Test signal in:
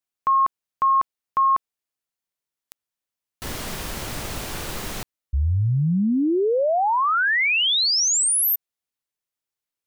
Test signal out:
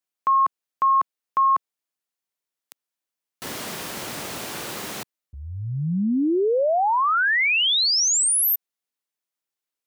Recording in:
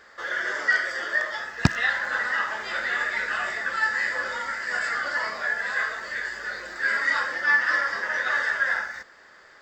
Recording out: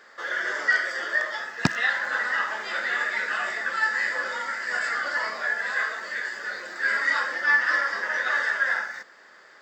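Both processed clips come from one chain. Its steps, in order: high-pass 180 Hz 12 dB/octave

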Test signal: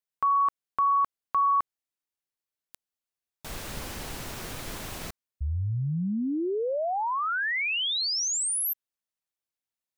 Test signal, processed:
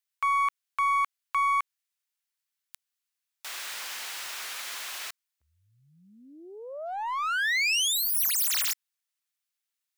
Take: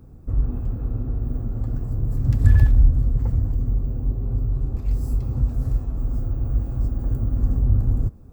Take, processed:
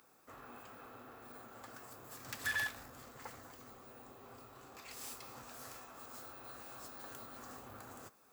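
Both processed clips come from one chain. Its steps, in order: tracing distortion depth 0.19 ms; high-pass 1.4 kHz 12 dB/octave; in parallel at -10.5 dB: wavefolder -37.5 dBFS; on the sum: trim +3.5 dB

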